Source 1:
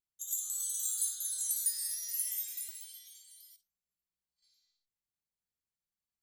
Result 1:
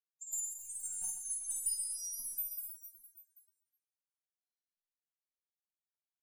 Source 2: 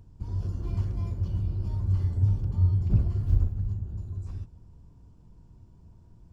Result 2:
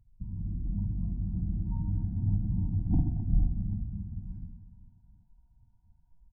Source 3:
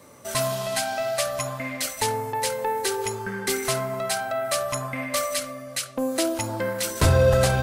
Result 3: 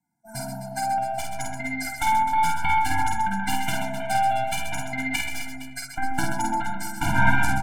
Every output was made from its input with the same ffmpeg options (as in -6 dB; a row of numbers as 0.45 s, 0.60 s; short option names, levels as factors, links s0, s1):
-filter_complex "[0:a]afftdn=nr=26:nf=-33,equalizer=f=430:t=o:w=2.8:g=4.5,aecho=1:1:5.4:0.6,acrossover=split=340|3400[s0][s1][s2];[s1]dynaudnorm=f=770:g=3:m=3.16[s3];[s0][s3][s2]amix=inputs=3:normalize=0,asuperstop=centerf=3200:order=4:qfactor=1.2,aeval=exprs='1.06*(cos(1*acos(clip(val(0)/1.06,-1,1)))-cos(1*PI/2))+0.422*(cos(3*acos(clip(val(0)/1.06,-1,1)))-cos(3*PI/2))+0.0531*(cos(6*acos(clip(val(0)/1.06,-1,1)))-cos(6*PI/2))+0.0596*(cos(7*acos(clip(val(0)/1.06,-1,1)))-cos(7*PI/2))':c=same,asplit=2[s4][s5];[s5]aecho=0:1:50|130|258|462.8|790.5:0.631|0.398|0.251|0.158|0.1[s6];[s4][s6]amix=inputs=2:normalize=0,afftfilt=real='re*eq(mod(floor(b*sr/1024/340),2),0)':imag='im*eq(mod(floor(b*sr/1024/340),2),0)':win_size=1024:overlap=0.75,volume=1.19"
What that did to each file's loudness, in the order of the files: -4.0 LU, -4.0 LU, -0.5 LU